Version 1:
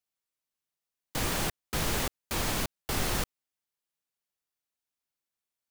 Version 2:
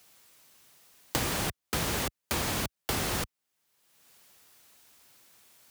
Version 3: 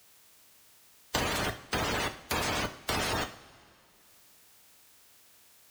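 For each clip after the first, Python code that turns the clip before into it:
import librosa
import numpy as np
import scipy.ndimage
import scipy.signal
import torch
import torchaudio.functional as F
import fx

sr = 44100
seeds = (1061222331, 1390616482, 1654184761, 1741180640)

y1 = scipy.signal.sosfilt(scipy.signal.butter(2, 54.0, 'highpass', fs=sr, output='sos'), x)
y1 = fx.band_squash(y1, sr, depth_pct=100)
y2 = fx.spec_quant(y1, sr, step_db=30)
y2 = fx.rev_double_slope(y2, sr, seeds[0], early_s=0.45, late_s=2.6, knee_db=-18, drr_db=7.0)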